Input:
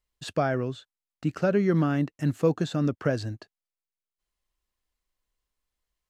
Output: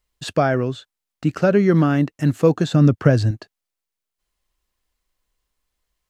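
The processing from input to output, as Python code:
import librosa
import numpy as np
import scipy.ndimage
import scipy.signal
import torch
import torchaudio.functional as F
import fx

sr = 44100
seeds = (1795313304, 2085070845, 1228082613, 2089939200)

y = fx.peak_eq(x, sr, hz=110.0, db=8.0, octaves=1.9, at=(2.72, 3.31))
y = y * 10.0 ** (7.5 / 20.0)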